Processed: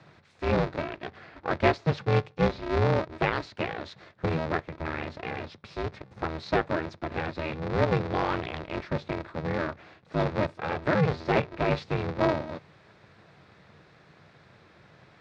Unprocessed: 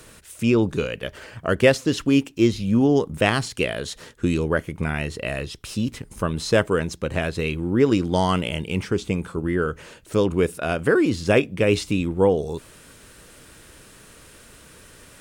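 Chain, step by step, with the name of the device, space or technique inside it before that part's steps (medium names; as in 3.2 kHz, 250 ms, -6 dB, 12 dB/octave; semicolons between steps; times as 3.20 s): ring modulator pedal into a guitar cabinet (polarity switched at an audio rate 160 Hz; cabinet simulation 86–4000 Hz, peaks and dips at 94 Hz +6 dB, 150 Hz +7 dB, 260 Hz -8 dB, 3 kHz -9 dB); trim -6 dB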